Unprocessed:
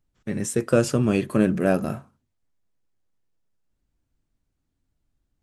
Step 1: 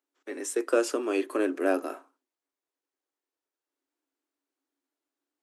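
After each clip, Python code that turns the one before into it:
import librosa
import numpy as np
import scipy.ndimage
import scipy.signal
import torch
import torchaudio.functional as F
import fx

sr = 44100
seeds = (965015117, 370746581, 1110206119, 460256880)

y = scipy.signal.sosfilt(scipy.signal.cheby1(6, 3, 270.0, 'highpass', fs=sr, output='sos'), x)
y = y * 10.0 ** (-1.5 / 20.0)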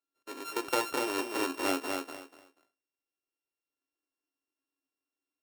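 y = np.r_[np.sort(x[:len(x) // 32 * 32].reshape(-1, 32), axis=1).ravel(), x[len(x) // 32 * 32:]]
y = fx.echo_feedback(y, sr, ms=242, feedback_pct=22, wet_db=-4.0)
y = y * 10.0 ** (-6.0 / 20.0)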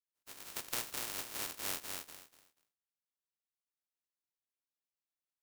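y = fx.spec_flatten(x, sr, power=0.16)
y = y * 10.0 ** (-8.5 / 20.0)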